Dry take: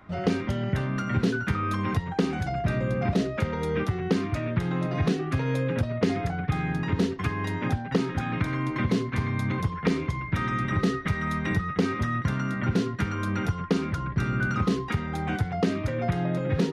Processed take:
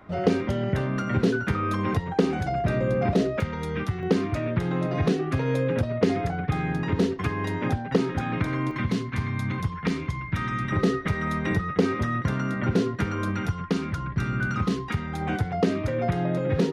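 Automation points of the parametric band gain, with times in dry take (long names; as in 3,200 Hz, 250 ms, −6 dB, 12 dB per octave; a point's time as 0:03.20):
parametric band 480 Hz 1.4 octaves
+6 dB
from 0:03.40 −5 dB
from 0:04.03 +4.5 dB
from 0:08.71 −5 dB
from 0:10.72 +5.5 dB
from 0:13.31 −2.5 dB
from 0:15.21 +4 dB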